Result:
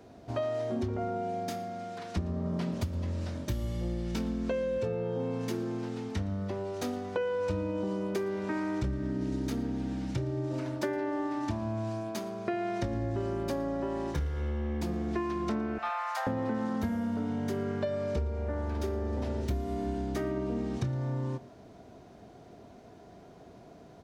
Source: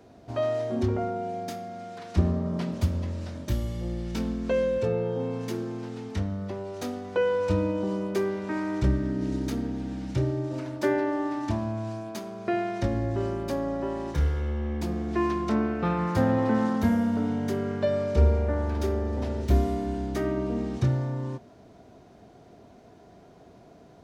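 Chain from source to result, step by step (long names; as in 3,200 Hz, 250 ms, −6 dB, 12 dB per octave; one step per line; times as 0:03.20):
0:15.78–0:16.27: Butterworth high-pass 600 Hz 96 dB per octave
downward compressor 12 to 1, threshold −28 dBFS, peak gain reduction 14 dB
single-tap delay 115 ms −22 dB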